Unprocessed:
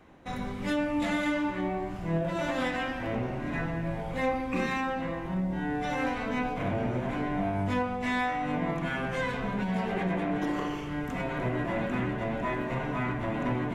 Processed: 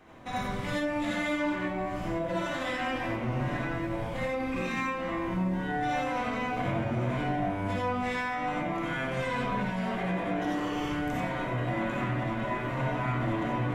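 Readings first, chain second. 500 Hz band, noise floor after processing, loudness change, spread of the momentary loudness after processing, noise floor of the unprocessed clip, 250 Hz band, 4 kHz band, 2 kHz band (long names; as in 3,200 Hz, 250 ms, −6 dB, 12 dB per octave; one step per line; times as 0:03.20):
−0.5 dB, −34 dBFS, 0.0 dB, 3 LU, −36 dBFS, −1.5 dB, +1.0 dB, +0.5 dB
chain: low-shelf EQ 190 Hz −4 dB
mains-hum notches 50/100/150/200/250/300/350/400/450/500 Hz
brickwall limiter −29 dBFS, peak gain reduction 10.5 dB
flanger 0.33 Hz, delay 7.8 ms, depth 2.4 ms, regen −72%
reverb whose tail is shaped and stops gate 110 ms rising, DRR −2.5 dB
level +5.5 dB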